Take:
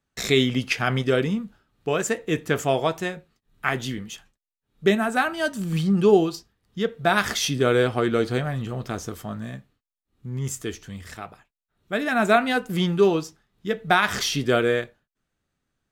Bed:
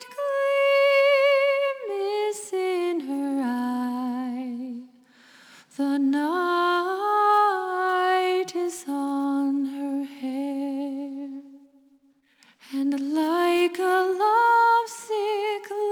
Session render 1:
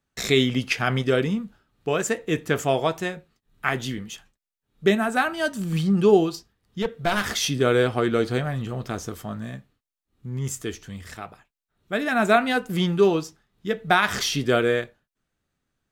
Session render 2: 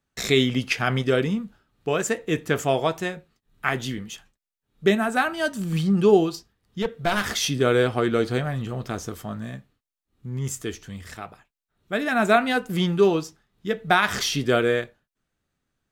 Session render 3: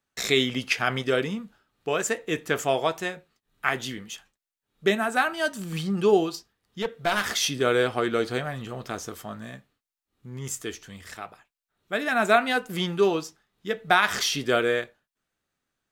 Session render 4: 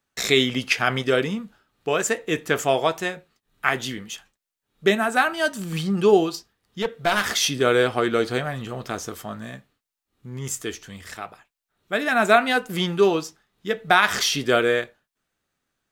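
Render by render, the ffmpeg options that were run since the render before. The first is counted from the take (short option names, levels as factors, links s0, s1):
-filter_complex "[0:a]asettb=1/sr,asplit=3[s0][s1][s2];[s0]atrim=end=6.824[s3];[s1]atrim=start=6.82:end=7.34,asetpts=PTS-STARTPTS,afade=t=in:d=0.004:c=qsin,afade=t=out:st=0.516:d=0.004:c=qsin,aeval=exprs='clip(val(0),-1,0.0708)':c=same[s4];[s2]atrim=start=7.336[s5];[s3][s4]acrossfade=d=0.004:c1=hsin:c2=qsin[s6];[s6][s5]acrossfade=d=0.004:c1=qsin:c2=hsin"
-af anull
-af "lowshelf=f=260:g=-10.5"
-af "volume=1.5,alimiter=limit=0.794:level=0:latency=1"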